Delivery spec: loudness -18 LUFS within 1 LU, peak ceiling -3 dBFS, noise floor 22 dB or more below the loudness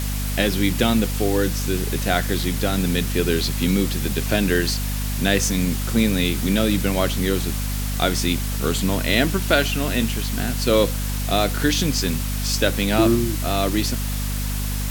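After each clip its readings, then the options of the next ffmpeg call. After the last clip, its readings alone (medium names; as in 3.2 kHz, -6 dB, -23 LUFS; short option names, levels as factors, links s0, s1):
hum 50 Hz; highest harmonic 250 Hz; hum level -22 dBFS; noise floor -24 dBFS; noise floor target -43 dBFS; loudness -21.0 LUFS; peak level -2.5 dBFS; loudness target -18.0 LUFS
-> -af "bandreject=f=50:t=h:w=6,bandreject=f=100:t=h:w=6,bandreject=f=150:t=h:w=6,bandreject=f=200:t=h:w=6,bandreject=f=250:t=h:w=6"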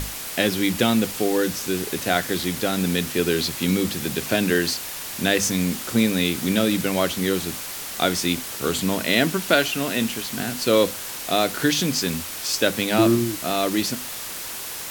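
hum not found; noise floor -33 dBFS; noise floor target -45 dBFS
-> -af "afftdn=nr=12:nf=-33"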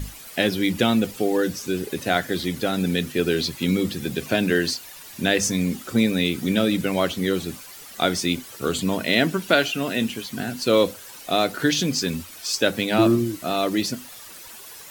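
noise floor -42 dBFS; noise floor target -45 dBFS
-> -af "afftdn=nr=6:nf=-42"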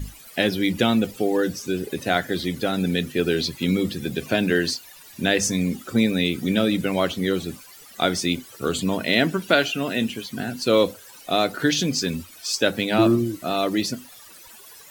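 noise floor -46 dBFS; loudness -23.0 LUFS; peak level -3.0 dBFS; loudness target -18.0 LUFS
-> -af "volume=1.78,alimiter=limit=0.708:level=0:latency=1"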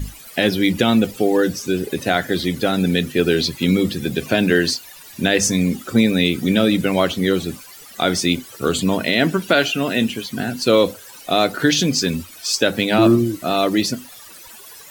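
loudness -18.5 LUFS; peak level -3.0 dBFS; noise floor -41 dBFS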